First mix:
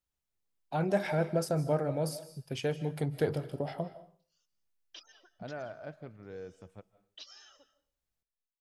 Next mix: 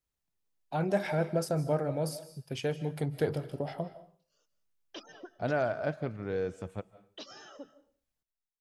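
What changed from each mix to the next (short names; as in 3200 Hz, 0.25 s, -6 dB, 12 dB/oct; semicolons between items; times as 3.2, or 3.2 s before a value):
second voice +11.5 dB; background: remove band-pass 4500 Hz, Q 0.87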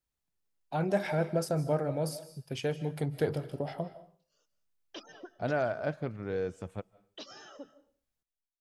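second voice: send -6.5 dB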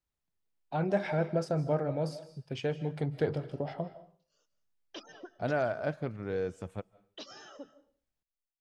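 first voice: add air absorption 100 m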